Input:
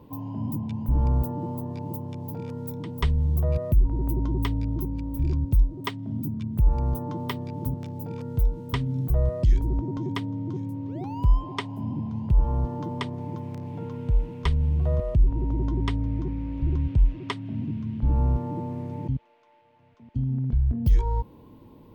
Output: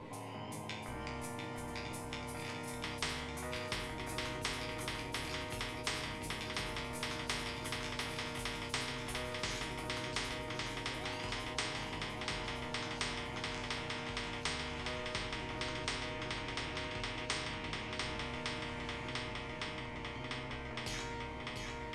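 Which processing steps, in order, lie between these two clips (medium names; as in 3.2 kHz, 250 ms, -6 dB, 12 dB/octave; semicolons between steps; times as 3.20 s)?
steep low-pass 9.7 kHz 36 dB/octave; peaking EQ 2.1 kHz +13.5 dB 0.27 oct; chord resonator G#2 minor, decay 0.5 s; shuffle delay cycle 1158 ms, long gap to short 1.5:1, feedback 62%, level -7 dB; spectrum-flattening compressor 4:1; trim +9 dB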